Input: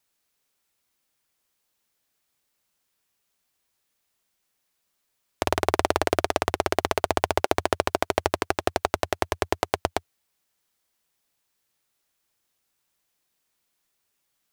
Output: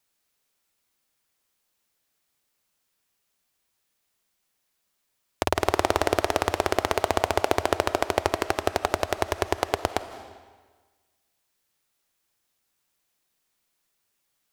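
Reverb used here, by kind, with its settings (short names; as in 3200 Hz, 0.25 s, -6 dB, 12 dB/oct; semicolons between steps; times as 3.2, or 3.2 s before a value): digital reverb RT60 1.4 s, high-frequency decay 0.9×, pre-delay 0.12 s, DRR 12 dB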